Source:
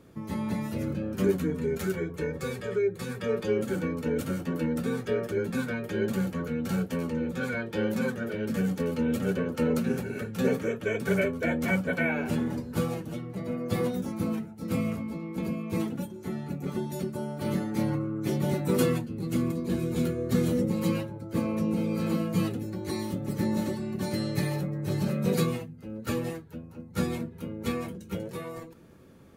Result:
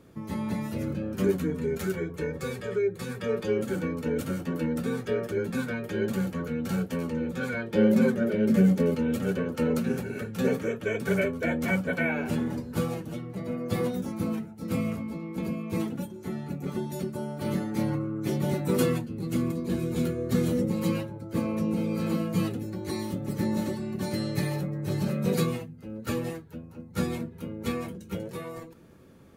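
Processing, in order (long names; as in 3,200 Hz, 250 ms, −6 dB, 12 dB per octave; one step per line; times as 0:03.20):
0:07.72–0:08.95: hollow resonant body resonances 210/380/560/2,100 Hz, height 10 dB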